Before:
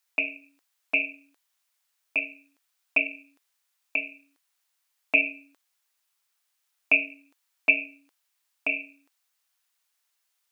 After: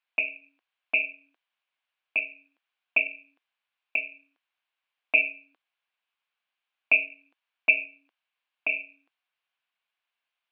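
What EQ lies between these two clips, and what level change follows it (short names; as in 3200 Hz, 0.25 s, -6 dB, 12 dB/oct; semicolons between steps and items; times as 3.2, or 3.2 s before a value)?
dynamic EQ 280 Hz, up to -5 dB, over -52 dBFS, Q 5; speaker cabinet 220–2800 Hz, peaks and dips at 280 Hz -8 dB, 410 Hz -10 dB, 590 Hz -5 dB, 880 Hz -6 dB, 1300 Hz -7 dB, 1900 Hz -8 dB; +3.5 dB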